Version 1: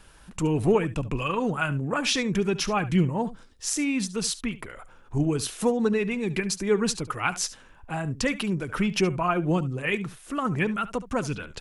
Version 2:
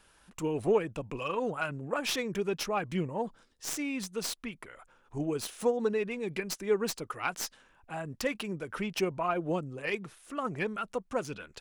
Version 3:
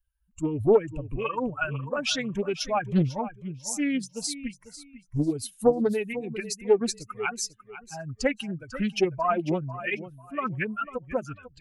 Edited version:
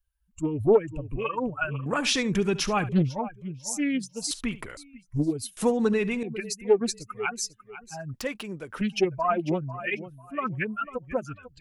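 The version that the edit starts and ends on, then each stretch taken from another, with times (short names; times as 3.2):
3
1.86–2.89 from 1
4.31–4.77 from 1
5.57–6.23 from 1
8.14–8.81 from 2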